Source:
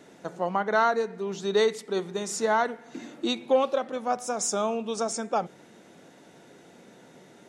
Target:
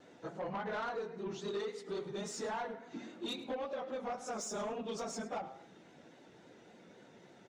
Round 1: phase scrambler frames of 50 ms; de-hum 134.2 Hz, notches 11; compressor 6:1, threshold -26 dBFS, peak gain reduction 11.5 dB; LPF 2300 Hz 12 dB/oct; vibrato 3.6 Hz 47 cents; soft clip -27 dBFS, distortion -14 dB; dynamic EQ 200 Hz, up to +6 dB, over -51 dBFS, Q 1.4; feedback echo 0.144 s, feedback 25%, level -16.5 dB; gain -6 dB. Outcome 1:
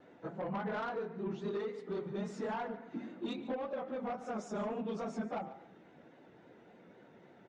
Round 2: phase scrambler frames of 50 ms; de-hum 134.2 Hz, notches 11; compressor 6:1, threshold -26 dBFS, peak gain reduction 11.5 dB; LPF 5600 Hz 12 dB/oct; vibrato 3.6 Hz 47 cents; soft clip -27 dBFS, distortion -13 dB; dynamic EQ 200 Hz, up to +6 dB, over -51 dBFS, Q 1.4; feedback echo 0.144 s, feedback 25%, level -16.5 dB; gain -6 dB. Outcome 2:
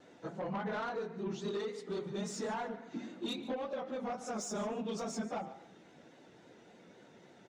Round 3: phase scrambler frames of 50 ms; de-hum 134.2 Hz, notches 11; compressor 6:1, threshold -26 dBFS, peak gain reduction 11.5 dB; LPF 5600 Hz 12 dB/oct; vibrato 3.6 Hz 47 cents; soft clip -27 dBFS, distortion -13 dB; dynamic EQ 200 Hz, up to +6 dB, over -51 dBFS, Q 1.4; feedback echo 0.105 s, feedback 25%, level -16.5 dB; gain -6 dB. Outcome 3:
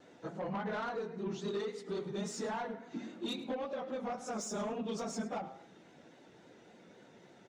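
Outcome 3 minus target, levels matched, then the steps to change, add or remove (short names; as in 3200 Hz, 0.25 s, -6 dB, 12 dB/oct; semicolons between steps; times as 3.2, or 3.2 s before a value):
125 Hz band +3.5 dB
change: dynamic EQ 55 Hz, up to +6 dB, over -51 dBFS, Q 1.4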